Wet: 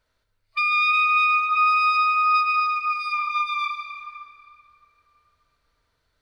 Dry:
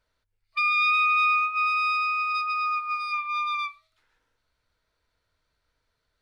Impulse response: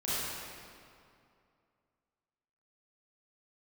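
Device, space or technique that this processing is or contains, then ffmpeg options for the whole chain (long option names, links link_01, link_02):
ducked reverb: -filter_complex "[0:a]asplit=3[link_01][link_02][link_03];[1:a]atrim=start_sample=2205[link_04];[link_02][link_04]afir=irnorm=-1:irlink=0[link_05];[link_03]apad=whole_len=274124[link_06];[link_05][link_06]sidechaincompress=threshold=-28dB:ratio=8:attack=16:release=106,volume=-8.5dB[link_07];[link_01][link_07]amix=inputs=2:normalize=0,asettb=1/sr,asplit=3[link_08][link_09][link_10];[link_08]atrim=end=1.494[link_11];[link_09]atrim=start=1.49:end=2.6,asetpts=PTS-STARTPTS,afade=type=in:duration=0.004:curve=qsin,afade=type=out:start_time=1.106:duration=0.004:curve=qsin,equalizer=frequency=1200:width=1.5:gain=4[link_12];[link_10]atrim=start=2.596[link_13];[link_11][link_12]acrossfade=duration=0.004:curve1=hsin:curve2=qsin[link_14];[link_14][link_13]acrossfade=duration=0.004:curve1=qsin:curve2=hsin,volume=1dB"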